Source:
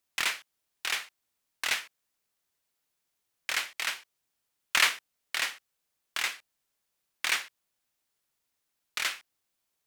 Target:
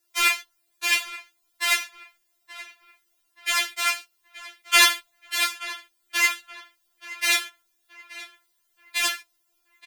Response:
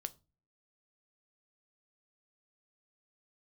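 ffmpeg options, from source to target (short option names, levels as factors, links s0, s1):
-filter_complex "[0:a]asplit=2[s0][s1];[s1]adelay=877,lowpass=f=3500:p=1,volume=0.158,asplit=2[s2][s3];[s3]adelay=877,lowpass=f=3500:p=1,volume=0.41,asplit=2[s4][s5];[s5]adelay=877,lowpass=f=3500:p=1,volume=0.41,asplit=2[s6][s7];[s7]adelay=877,lowpass=f=3500:p=1,volume=0.41[s8];[s0][s2][s4][s6][s8]amix=inputs=5:normalize=0,asplit=2[s9][s10];[1:a]atrim=start_sample=2205,highshelf=f=11000:g=8.5[s11];[s10][s11]afir=irnorm=-1:irlink=0,volume=0.891[s12];[s9][s12]amix=inputs=2:normalize=0,afftfilt=real='re*4*eq(mod(b,16),0)':imag='im*4*eq(mod(b,16),0)':win_size=2048:overlap=0.75,volume=2"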